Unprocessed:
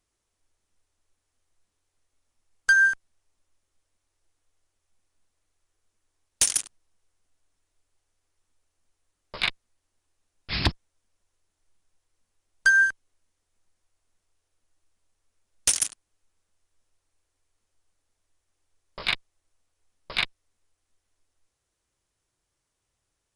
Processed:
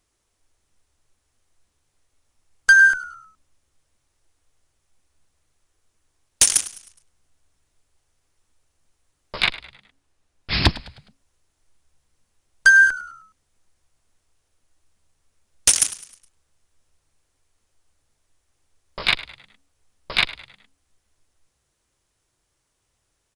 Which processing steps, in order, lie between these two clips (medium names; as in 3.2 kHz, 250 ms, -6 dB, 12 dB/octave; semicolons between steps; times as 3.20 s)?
9.44–10.51 s: treble shelf 5.4 kHz -6.5 dB; frequency-shifting echo 104 ms, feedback 43%, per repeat -70 Hz, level -17.5 dB; trim +6.5 dB